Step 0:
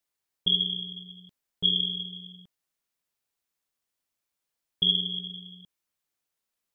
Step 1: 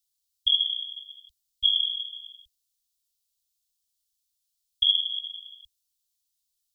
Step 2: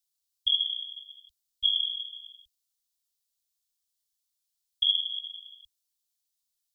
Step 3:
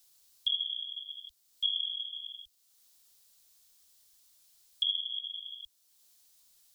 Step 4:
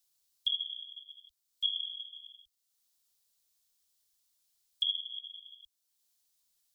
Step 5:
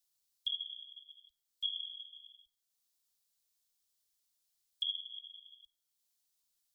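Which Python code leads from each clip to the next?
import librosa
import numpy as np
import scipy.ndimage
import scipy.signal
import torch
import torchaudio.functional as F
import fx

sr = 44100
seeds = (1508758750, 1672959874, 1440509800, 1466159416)

y1 = scipy.signal.sosfilt(scipy.signal.cheby2(4, 50, [160.0, 1500.0], 'bandstop', fs=sr, output='sos'), x)
y1 = F.gain(torch.from_numpy(y1), 6.5).numpy()
y2 = fx.low_shelf(y1, sr, hz=210.0, db=-4.0)
y2 = F.gain(torch.from_numpy(y2), -3.0).numpy()
y3 = fx.band_squash(y2, sr, depth_pct=70)
y3 = F.gain(torch.from_numpy(y3), -3.5).numpy()
y4 = fx.upward_expand(y3, sr, threshold_db=-49.0, expansion=1.5)
y5 = fx.room_shoebox(y4, sr, seeds[0], volume_m3=2300.0, walls='furnished', distance_m=0.3)
y5 = F.gain(torch.from_numpy(y5), -5.0).numpy()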